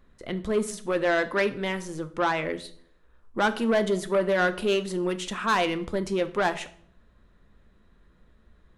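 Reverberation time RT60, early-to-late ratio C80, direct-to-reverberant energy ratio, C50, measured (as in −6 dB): 0.60 s, 19.0 dB, 9.5 dB, 15.5 dB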